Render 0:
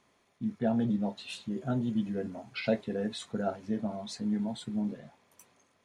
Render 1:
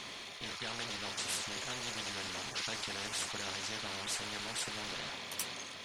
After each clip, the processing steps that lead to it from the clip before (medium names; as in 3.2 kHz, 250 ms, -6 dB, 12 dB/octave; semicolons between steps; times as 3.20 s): peaking EQ 3.7 kHz +14.5 dB 1.8 oct; spectrum-flattening compressor 10:1; trim -6 dB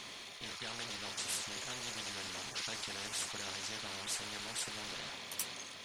treble shelf 6.2 kHz +5.5 dB; trim -3.5 dB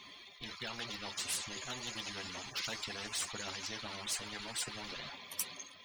expander on every frequency bin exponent 2; in parallel at -12 dB: integer overflow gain 36 dB; on the sum: trim +4 dB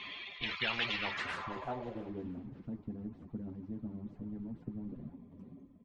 low-pass sweep 2.7 kHz -> 240 Hz, 0.99–2.38 s; frequency-shifting echo 337 ms, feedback 50%, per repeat -39 Hz, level -20.5 dB; trim +5 dB